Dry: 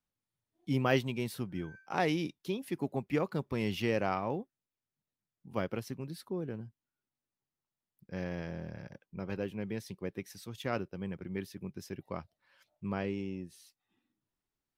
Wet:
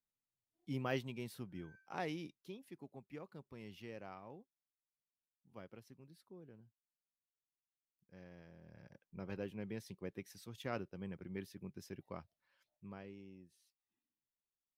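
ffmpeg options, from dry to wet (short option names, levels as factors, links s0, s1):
-af "volume=1.26,afade=t=out:st=1.86:d=1:silence=0.354813,afade=t=in:st=8.61:d=0.59:silence=0.251189,afade=t=out:st=11.95:d=1.09:silence=0.316228"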